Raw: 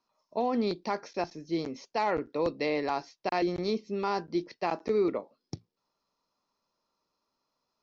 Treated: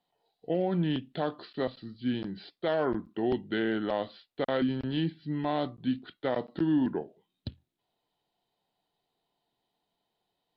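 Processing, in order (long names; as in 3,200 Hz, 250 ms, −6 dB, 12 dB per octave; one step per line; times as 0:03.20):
wrong playback speed 45 rpm record played at 33 rpm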